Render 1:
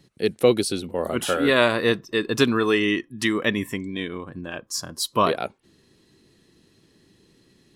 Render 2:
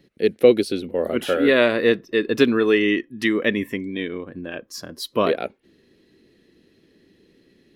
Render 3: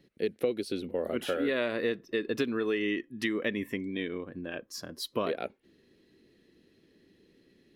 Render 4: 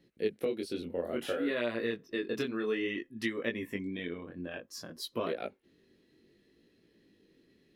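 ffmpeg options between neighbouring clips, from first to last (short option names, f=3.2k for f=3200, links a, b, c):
-af "equalizer=f=125:t=o:w=1:g=-5,equalizer=f=250:t=o:w=1:g=4,equalizer=f=500:t=o:w=1:g=6,equalizer=f=1k:t=o:w=1:g=-7,equalizer=f=2k:t=o:w=1:g=5,equalizer=f=8k:t=o:w=1:g=-11,volume=-1dB"
-af "acompressor=threshold=-21dB:ratio=4,volume=-6dB"
-af "flanger=delay=17:depth=6.6:speed=0.59"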